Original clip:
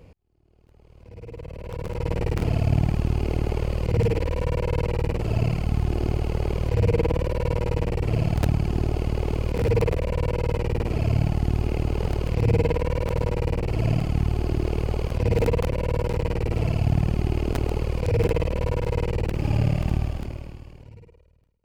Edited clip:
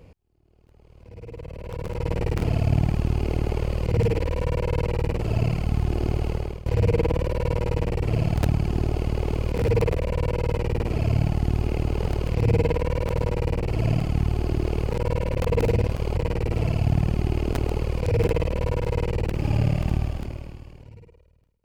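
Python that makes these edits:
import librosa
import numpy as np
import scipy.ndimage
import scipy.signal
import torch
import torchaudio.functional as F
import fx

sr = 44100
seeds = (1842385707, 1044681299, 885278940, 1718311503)

y = fx.edit(x, sr, fx.fade_out_to(start_s=6.29, length_s=0.37, floor_db=-20.0),
    fx.reverse_span(start_s=14.91, length_s=1.25), tone=tone)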